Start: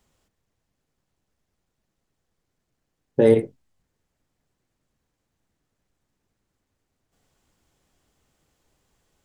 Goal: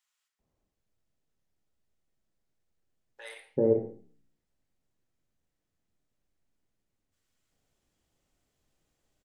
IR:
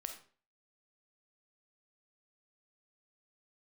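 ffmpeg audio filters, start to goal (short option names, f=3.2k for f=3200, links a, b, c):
-filter_complex "[0:a]acrossover=split=1100[a][b];[a]adelay=390[c];[c][b]amix=inputs=2:normalize=0[d];[1:a]atrim=start_sample=2205[e];[d][e]afir=irnorm=-1:irlink=0,flanger=delay=7.8:depth=8.6:regen=-87:speed=0.82:shape=sinusoidal,volume=-1dB"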